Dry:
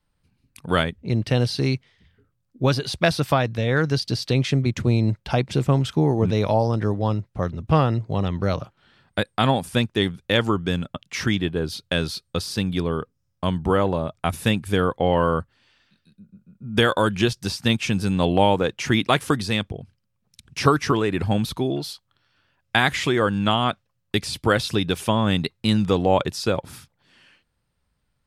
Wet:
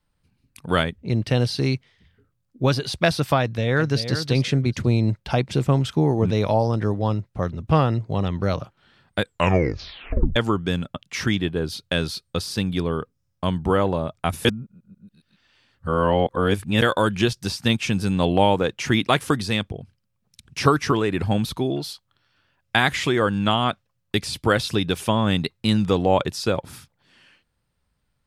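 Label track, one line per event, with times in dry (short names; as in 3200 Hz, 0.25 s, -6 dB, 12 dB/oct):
3.410000	4.100000	echo throw 0.38 s, feedback 15%, level -9 dB
9.190000	9.190000	tape stop 1.17 s
14.450000	16.820000	reverse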